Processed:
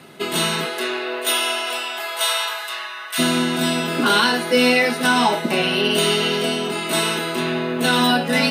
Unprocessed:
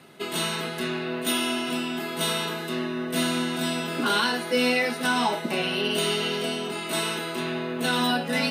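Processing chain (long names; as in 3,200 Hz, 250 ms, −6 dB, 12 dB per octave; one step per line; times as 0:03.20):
0:00.64–0:03.18: high-pass filter 310 Hz → 990 Hz 24 dB per octave
level +7 dB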